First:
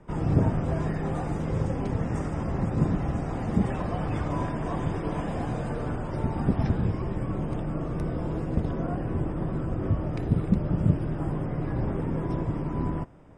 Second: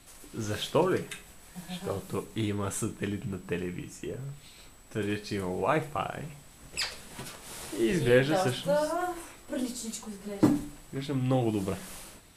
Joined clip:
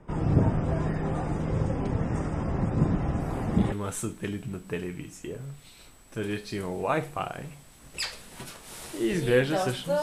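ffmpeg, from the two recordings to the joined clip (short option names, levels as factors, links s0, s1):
-filter_complex "[1:a]asplit=2[s0][s1];[0:a]apad=whole_dur=10.02,atrim=end=10.02,atrim=end=3.722[s2];[s1]atrim=start=2.508:end=8.81[s3];[s0]atrim=start=1.99:end=2.51,asetpts=PTS-STARTPTS,volume=0.355,afade=t=in:d=0.004:c=hsin,afade=t=out:st=0.516:d=0.004:c=hsin,adelay=3200[s4];[s2][s3]acrossfade=d=0.004:c1=hsin:c2=hsin[s5];[s5][s4]amix=inputs=2:normalize=0"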